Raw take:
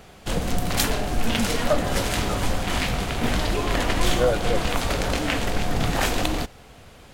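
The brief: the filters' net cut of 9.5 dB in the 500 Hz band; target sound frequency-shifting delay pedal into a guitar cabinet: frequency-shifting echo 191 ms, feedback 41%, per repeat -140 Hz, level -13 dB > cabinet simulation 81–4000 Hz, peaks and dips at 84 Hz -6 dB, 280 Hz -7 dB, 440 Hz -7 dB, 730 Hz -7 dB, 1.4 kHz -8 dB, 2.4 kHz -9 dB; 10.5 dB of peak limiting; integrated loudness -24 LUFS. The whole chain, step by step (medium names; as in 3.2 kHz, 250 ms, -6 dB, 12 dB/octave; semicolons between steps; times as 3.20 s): peaking EQ 500 Hz -6 dB; peak limiter -13.5 dBFS; frequency-shifting echo 191 ms, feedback 41%, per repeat -140 Hz, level -13 dB; cabinet simulation 81–4000 Hz, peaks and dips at 84 Hz -6 dB, 280 Hz -7 dB, 440 Hz -7 dB, 730 Hz -7 dB, 1.4 kHz -8 dB, 2.4 kHz -9 dB; trim +7 dB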